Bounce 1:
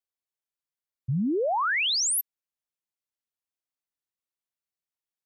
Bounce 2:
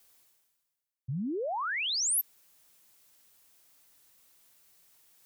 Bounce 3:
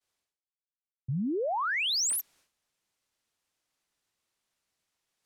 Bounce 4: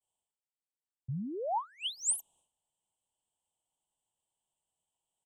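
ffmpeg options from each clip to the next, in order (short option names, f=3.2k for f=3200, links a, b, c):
-af "highshelf=f=6.7k:g=7.5,areverse,acompressor=mode=upward:threshold=-30dB:ratio=2.5,areverse,volume=-7.5dB"
-af "agate=range=-33dB:threshold=-53dB:ratio=3:detection=peak,adynamicsmooth=sensitivity=5.5:basefreq=7.6k,volume=3dB"
-af "firequalizer=gain_entry='entry(140,0);entry(290,-5);entry(560,-1);entry(900,6);entry(1400,-26);entry(2100,-28);entry(3000,3);entry(4700,-25);entry(8000,8);entry(12000,-12)':delay=0.05:min_phase=1,volume=-4.5dB"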